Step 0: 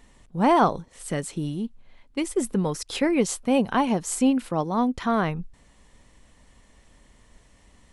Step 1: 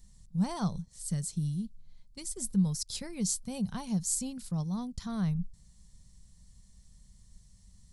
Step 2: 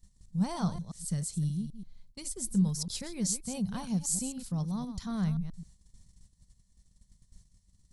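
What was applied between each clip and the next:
EQ curve 190 Hz 0 dB, 280 Hz -22 dB, 2800 Hz -19 dB, 4500 Hz -1 dB
reverse delay 0.131 s, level -10.5 dB; gate -53 dBFS, range -11 dB

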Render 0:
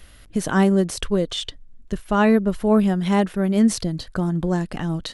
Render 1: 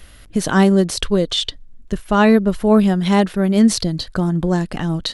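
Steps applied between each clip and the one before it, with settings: dynamic EQ 4200 Hz, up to +6 dB, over -46 dBFS, Q 1.8; gain +4 dB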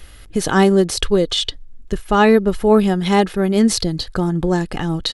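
comb 2.4 ms, depth 32%; gain +1 dB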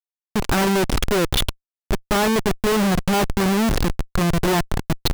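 level quantiser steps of 19 dB; Schmitt trigger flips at -30 dBFS; gain +5 dB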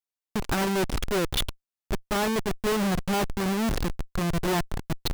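limiter -22.5 dBFS, peak gain reduction 11 dB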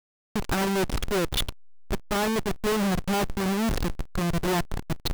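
level-crossing sampler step -40.5 dBFS

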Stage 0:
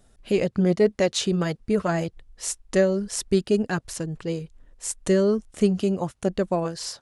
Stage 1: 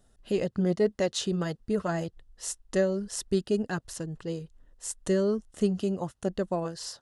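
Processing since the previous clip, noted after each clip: notch 2300 Hz, Q 5.7; gain -5.5 dB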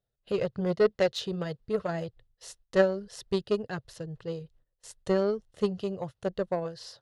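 ten-band EQ 125 Hz +11 dB, 250 Hz -7 dB, 500 Hz +9 dB, 2000 Hz +3 dB, 4000 Hz +7 dB, 8000 Hz -8 dB; gate -49 dBFS, range -17 dB; added harmonics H 3 -14 dB, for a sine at -8.5 dBFS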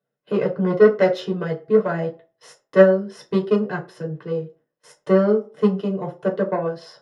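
reverb RT60 0.40 s, pre-delay 3 ms, DRR -1 dB; gain -5.5 dB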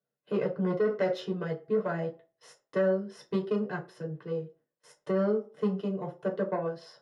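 limiter -10.5 dBFS, peak gain reduction 9 dB; gain -8 dB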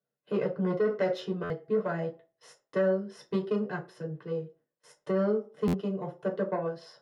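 stuck buffer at 1.43/5.67, samples 512, times 5

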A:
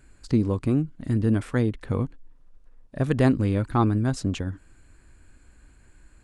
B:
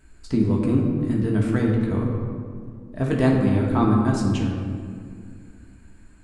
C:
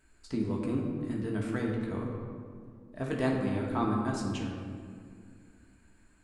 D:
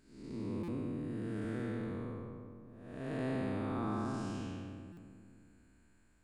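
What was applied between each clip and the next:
reverb RT60 2.2 s, pre-delay 3 ms, DRR -2.5 dB; gain -2 dB
low shelf 260 Hz -8.5 dB; gain -6.5 dB
time blur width 0.334 s; stuck buffer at 0.63/4.92, samples 256, times 8; gain -4.5 dB

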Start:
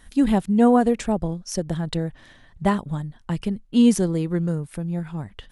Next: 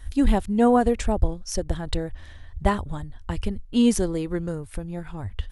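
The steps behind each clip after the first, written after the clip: resonant low shelf 110 Hz +12 dB, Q 3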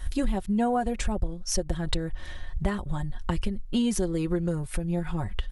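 comb 5.5 ms, depth 63%; compressor 5:1, threshold -29 dBFS, peak gain reduction 16 dB; gain +5 dB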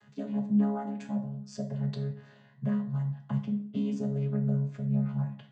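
chord vocoder bare fifth, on C#3; plate-style reverb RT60 0.54 s, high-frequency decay 0.75×, DRR 3.5 dB; gain -4 dB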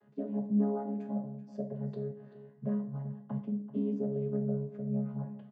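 band-pass 400 Hz, Q 1.4; echo 0.385 s -15 dB; gain +3.5 dB

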